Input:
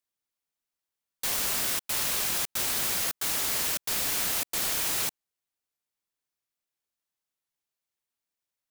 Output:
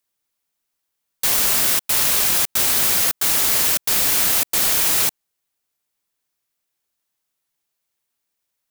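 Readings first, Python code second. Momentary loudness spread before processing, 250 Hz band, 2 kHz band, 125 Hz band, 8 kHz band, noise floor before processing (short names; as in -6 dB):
2 LU, +8.5 dB, +8.5 dB, +8.5 dB, +10.0 dB, under -85 dBFS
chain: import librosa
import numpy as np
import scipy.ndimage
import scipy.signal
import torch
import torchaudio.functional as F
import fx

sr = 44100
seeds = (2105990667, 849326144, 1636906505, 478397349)

y = fx.high_shelf(x, sr, hz=10000.0, db=4.0)
y = y * 10.0 ** (8.5 / 20.0)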